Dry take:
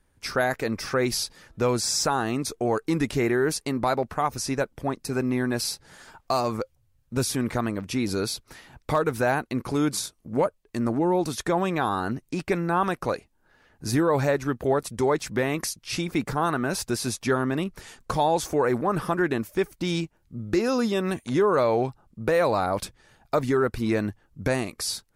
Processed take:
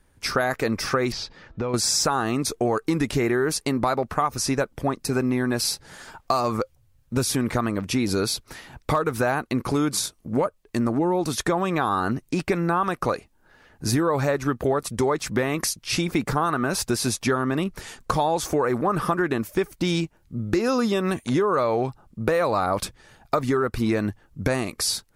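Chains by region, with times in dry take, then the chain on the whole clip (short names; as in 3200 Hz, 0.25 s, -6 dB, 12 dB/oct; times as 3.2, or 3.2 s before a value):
1.12–1.74 air absorption 190 m + compressor, threshold -28 dBFS
whole clip: dynamic EQ 1200 Hz, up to +6 dB, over -44 dBFS, Q 5.5; compressor, threshold -24 dBFS; gain +5.5 dB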